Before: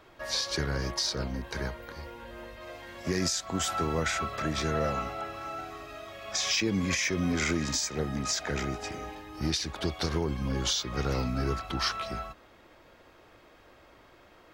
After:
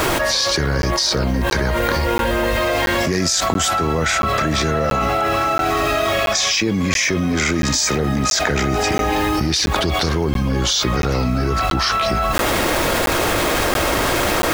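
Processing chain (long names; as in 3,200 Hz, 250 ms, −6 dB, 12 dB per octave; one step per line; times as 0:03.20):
bit reduction 10 bits
regular buffer underruns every 0.68 s, samples 512, zero, from 0:00.82
envelope flattener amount 100%
level +7.5 dB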